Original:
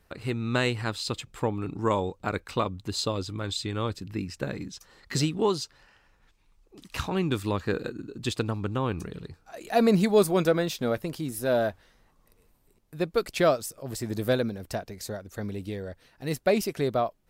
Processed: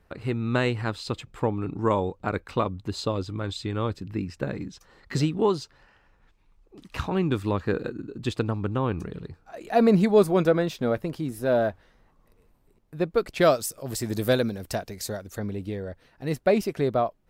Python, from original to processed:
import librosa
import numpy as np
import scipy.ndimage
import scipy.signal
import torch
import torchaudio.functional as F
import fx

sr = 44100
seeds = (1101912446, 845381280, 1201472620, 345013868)

y = fx.high_shelf(x, sr, hz=3200.0, db=fx.steps((0.0, -11.0), (13.4, 3.0), (15.37, -9.5)))
y = y * librosa.db_to_amplitude(2.5)